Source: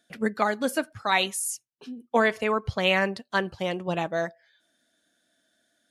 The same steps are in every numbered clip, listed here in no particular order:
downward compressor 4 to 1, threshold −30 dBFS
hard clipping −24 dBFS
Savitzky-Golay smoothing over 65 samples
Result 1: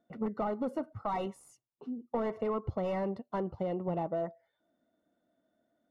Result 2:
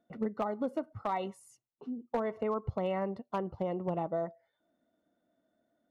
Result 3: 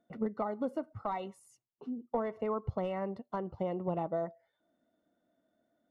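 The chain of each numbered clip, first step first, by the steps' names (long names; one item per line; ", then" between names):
hard clipping, then Savitzky-Golay smoothing, then downward compressor
Savitzky-Golay smoothing, then downward compressor, then hard clipping
downward compressor, then hard clipping, then Savitzky-Golay smoothing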